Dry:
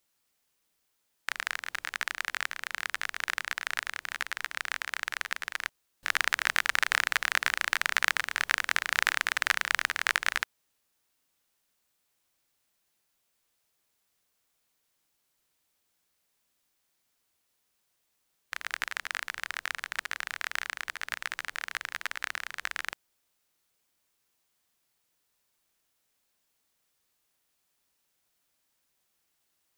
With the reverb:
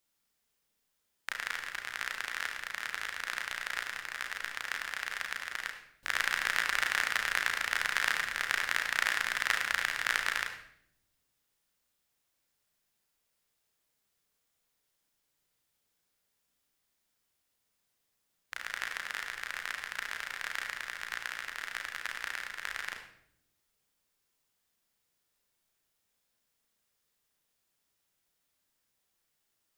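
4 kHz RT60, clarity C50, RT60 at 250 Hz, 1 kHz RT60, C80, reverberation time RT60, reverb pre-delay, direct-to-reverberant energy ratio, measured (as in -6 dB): 0.60 s, 6.5 dB, 1.3 s, 0.60 s, 9.0 dB, 0.70 s, 34 ms, 2.0 dB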